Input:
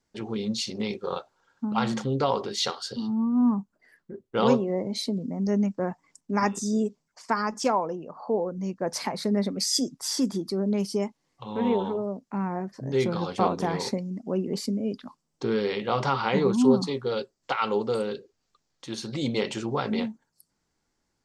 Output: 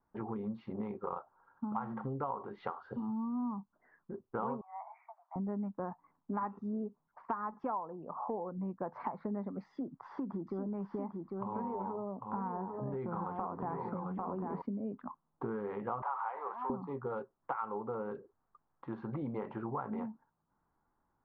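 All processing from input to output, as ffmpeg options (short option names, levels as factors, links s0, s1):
-filter_complex "[0:a]asettb=1/sr,asplit=3[s0][s1][s2];[s0]atrim=end=4.614[s3];[s1]atrim=start=4.61:end=5.36,asetpts=PTS-STARTPTS,afade=t=in:d=0.004:c=qsin,afade=t=out:st=0.746:d=0.004:c=qsin,asuperpass=centerf=1300:order=20:qfactor=0.73,afreqshift=29[s4];[s2]atrim=start=5.356[s5];[s3][s4]acrossfade=d=0.004:c1=hsin:c2=qsin[s6];[s6][s5]acrossfade=d=0.004:c1=qsin:c2=hsin,asettb=1/sr,asplit=3[s7][s8][s9];[s7]atrim=end=9.674[s10];[s8]atrim=start=9.67:end=14.62,asetpts=PTS-STARTPTS,afade=t=in:d=0.004:c=qsin,afade=t=out:st=4.946:d=0.004:c=qsin,acompressor=threshold=0.0562:ratio=4:attack=3.2:release=140:knee=1:detection=peak,aecho=1:1:798:0.501,atrim=end_sample=218295[s11];[s9]atrim=start=14.616[s12];[s10][s11]acrossfade=d=0.004:c1=hsin:c2=qsin[s13];[s13][s12]acrossfade=d=0.004:c1=qsin:c2=hsin,asettb=1/sr,asplit=3[s14][s15][s16];[s14]atrim=end=16.024[s17];[s15]atrim=start=16.02:end=16.7,asetpts=PTS-STARTPTS,afade=t=in:d=0.004:c=qsin,afade=t=out:st=0.676:d=0.004:c=qsin,aeval=exprs='val(0)+0.5*0.0299*sgn(val(0))':c=same,highpass=f=610:w=0.5412,highpass=f=610:w=1.3066,bandreject=f=1400:w=30[s18];[s16]atrim=start=16.696[s19];[s17][s18]acrossfade=d=0.004:c1=hsin:c2=qsin[s20];[s20][s19]acrossfade=d=0.004:c1=qsin:c2=hsin,lowpass=f=1200:w=0.5412,lowpass=f=1200:w=1.3066,lowshelf=f=720:t=q:w=1.5:g=-7,acompressor=threshold=0.01:ratio=5,volume=1.68"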